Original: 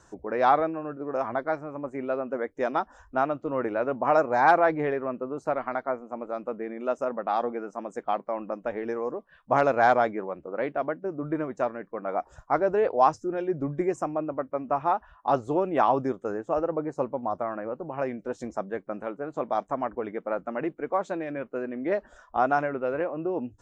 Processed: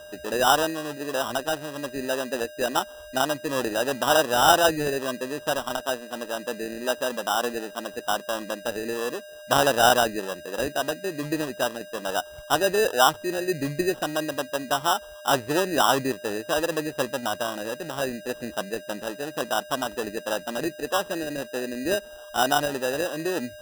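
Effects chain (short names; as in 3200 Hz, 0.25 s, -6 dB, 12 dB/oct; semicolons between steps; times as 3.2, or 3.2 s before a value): whine 1600 Hz -42 dBFS; sample-and-hold 20×; gain +1.5 dB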